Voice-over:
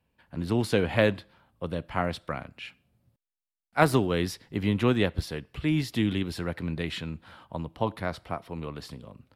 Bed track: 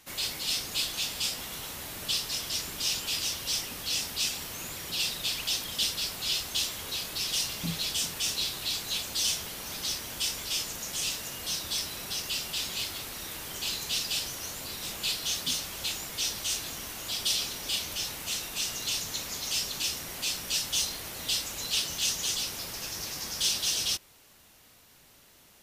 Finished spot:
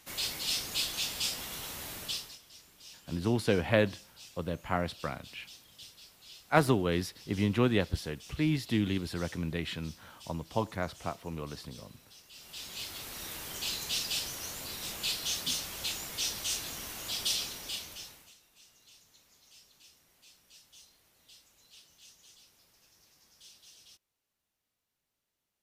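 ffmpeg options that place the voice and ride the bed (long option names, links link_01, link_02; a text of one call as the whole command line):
ffmpeg -i stem1.wav -i stem2.wav -filter_complex "[0:a]adelay=2750,volume=-3dB[link_01];[1:a]volume=17.5dB,afade=type=out:start_time=1.92:duration=0.46:silence=0.1,afade=type=in:start_time=12.32:duration=0.92:silence=0.105925,afade=type=out:start_time=17.24:duration=1.1:silence=0.0530884[link_02];[link_01][link_02]amix=inputs=2:normalize=0" out.wav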